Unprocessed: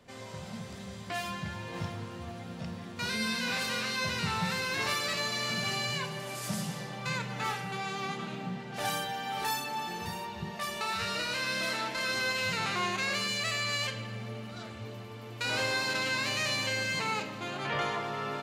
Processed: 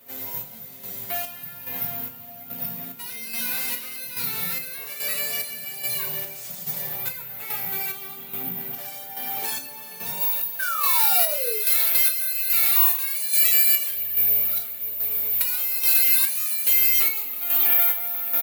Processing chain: HPF 100 Hz; comb 7.3 ms, depth 90%; compressor, threshold -31 dBFS, peak gain reduction 7.5 dB; chopper 1.2 Hz, depth 60%, duty 50%; careless resampling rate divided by 3×, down none, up zero stuff; high shelf 12000 Hz -3 dB; 10.59–11.59 painted sound fall 410–1600 Hz -29 dBFS; tilt +1.5 dB/oct, from 10.2 s +4 dB/oct; reverb RT60 0.30 s, pre-delay 4 ms, DRR 3.5 dB; gain -1.5 dB

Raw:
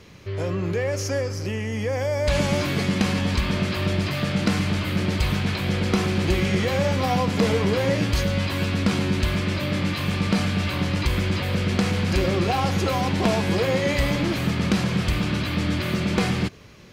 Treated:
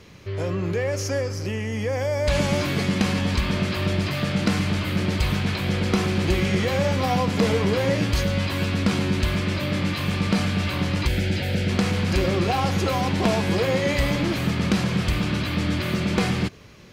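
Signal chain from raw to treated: 11.08–11.69 Butterworth band-stop 1100 Hz, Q 2.2

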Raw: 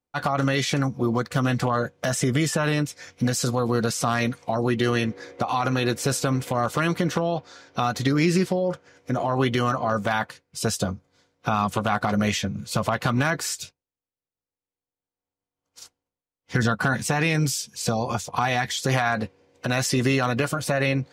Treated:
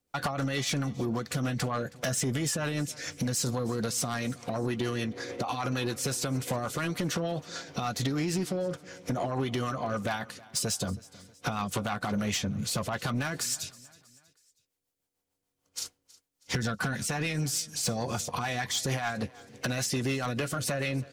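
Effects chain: high shelf 4200 Hz +7 dB; compressor 8:1, threshold -31 dBFS, peak gain reduction 15 dB; rotary speaker horn 6.7 Hz; soft clip -30 dBFS, distortion -16 dB; feedback echo 0.32 s, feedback 46%, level -21.5 dB; gain +7.5 dB

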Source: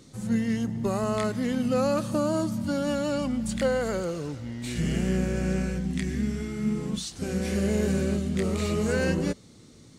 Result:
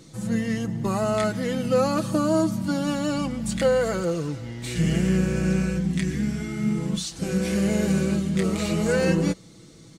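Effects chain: comb 6.1 ms, depth 58%; gain +2.5 dB

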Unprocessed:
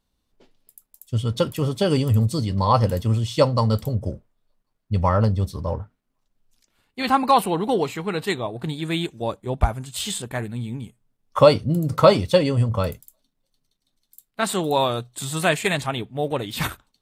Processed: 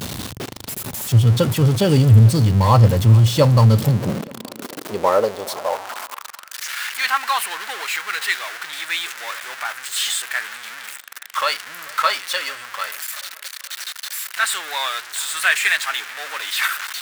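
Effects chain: zero-crossing step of -22 dBFS; tape echo 0.437 s, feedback 58%, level -20.5 dB, low-pass 3900 Hz; high-pass sweep 110 Hz -> 1600 Hz, 3.6–6.63

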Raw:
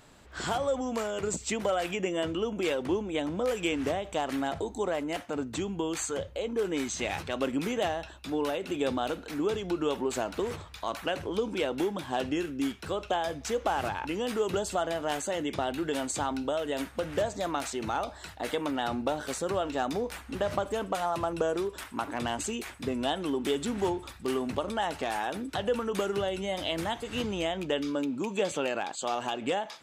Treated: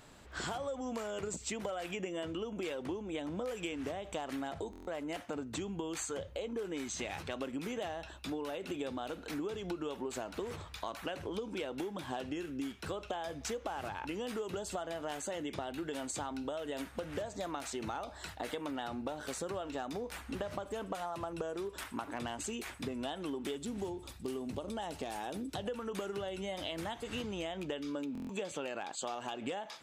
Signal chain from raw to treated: 23.58–25.66 bell 1500 Hz -9 dB 1.9 oct; compressor, threshold -35 dBFS, peak gain reduction 11.5 dB; stuck buffer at 4.71/28.13, samples 1024, times 6; gain -1 dB

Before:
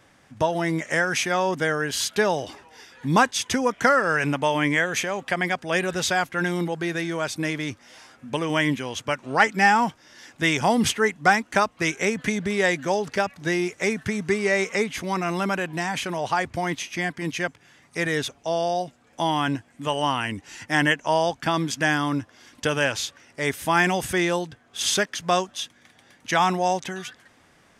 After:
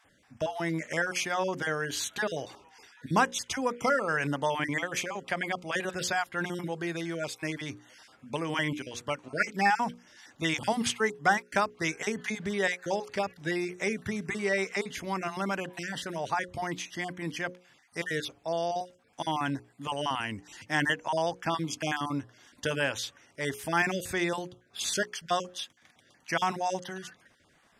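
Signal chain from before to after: random spectral dropouts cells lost 21%; notches 60/120/180/240/300/360/420/480/540 Hz; gain -6 dB

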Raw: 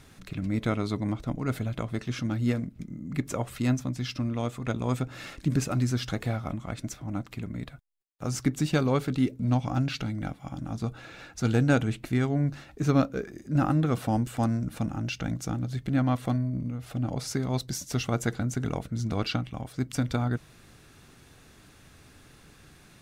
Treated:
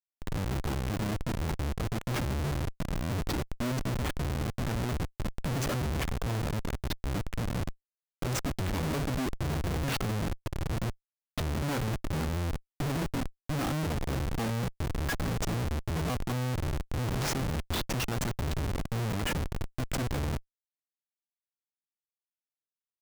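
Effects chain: trilling pitch shifter -8.5 st, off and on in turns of 0.447 s; Schmitt trigger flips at -34.5 dBFS

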